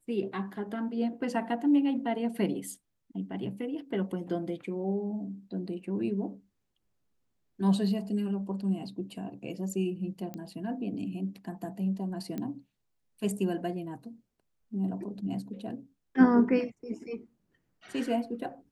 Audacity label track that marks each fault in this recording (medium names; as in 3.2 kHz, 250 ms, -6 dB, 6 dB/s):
10.340000	10.340000	pop -25 dBFS
12.380000	12.380000	pop -23 dBFS